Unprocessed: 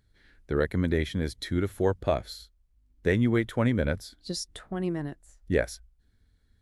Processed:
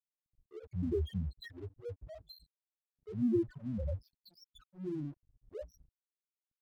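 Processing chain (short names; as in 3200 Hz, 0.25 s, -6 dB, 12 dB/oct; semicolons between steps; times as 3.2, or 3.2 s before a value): auto swell 0.306 s; loudest bins only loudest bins 2; crossover distortion -58.5 dBFS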